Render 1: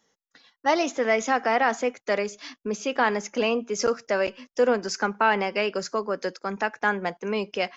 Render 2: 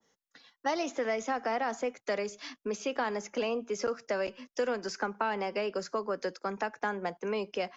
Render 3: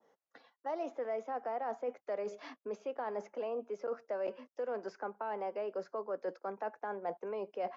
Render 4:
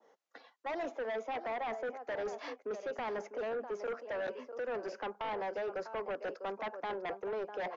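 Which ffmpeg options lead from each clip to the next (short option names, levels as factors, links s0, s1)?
-filter_complex "[0:a]acrossover=split=110|270|1400|4100[s0][s1][s2][s3][s4];[s0]acompressor=threshold=0.00141:ratio=4[s5];[s1]acompressor=threshold=0.00631:ratio=4[s6];[s2]acompressor=threshold=0.0398:ratio=4[s7];[s3]acompressor=threshold=0.0112:ratio=4[s8];[s4]acompressor=threshold=0.00794:ratio=4[s9];[s5][s6][s7][s8][s9]amix=inputs=5:normalize=0,adynamicequalizer=threshold=0.00631:dfrequency=1500:dqfactor=0.7:tfrequency=1500:tqfactor=0.7:attack=5:release=100:ratio=0.375:range=1.5:mode=cutabove:tftype=highshelf,volume=0.794"
-af "areverse,acompressor=threshold=0.01:ratio=10,areverse,bandpass=f=630:t=q:w=1.3:csg=0,volume=2.51"
-filter_complex "[0:a]aecho=1:1:649:0.211,acrossover=split=230[s0][s1];[s1]aeval=exprs='0.0531*sin(PI/2*2.82*val(0)/0.0531)':c=same[s2];[s0][s2]amix=inputs=2:normalize=0,aresample=16000,aresample=44100,volume=0.398"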